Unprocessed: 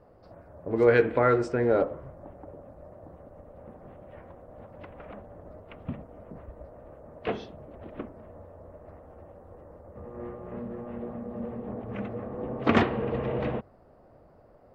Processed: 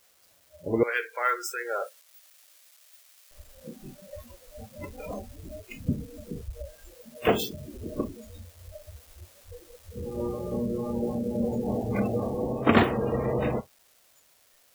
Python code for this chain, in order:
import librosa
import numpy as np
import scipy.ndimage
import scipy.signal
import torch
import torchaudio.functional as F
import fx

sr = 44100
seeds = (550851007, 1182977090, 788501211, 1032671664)

y = x + 0.5 * 10.0 ** (-23.0 / 20.0) * np.diff(np.sign(x), prepend=np.sign(x[:1]))
y = fx.bessel_highpass(y, sr, hz=1700.0, order=2, at=(0.83, 3.31))
y = fx.noise_reduce_blind(y, sr, reduce_db=25)
y = fx.rider(y, sr, range_db=3, speed_s=0.5)
y = F.gain(torch.from_numpy(y), 5.0).numpy()